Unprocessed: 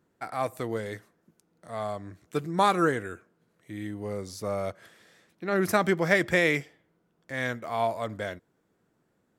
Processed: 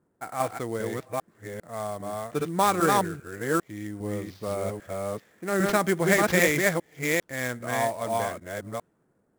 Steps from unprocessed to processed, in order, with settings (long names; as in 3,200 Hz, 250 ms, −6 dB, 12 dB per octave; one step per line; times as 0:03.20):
delay that plays each chunk backwards 400 ms, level −1 dB
low-pass that shuts in the quiet parts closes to 1,400 Hz, open at −22.5 dBFS
sample-rate reduction 9,300 Hz, jitter 20%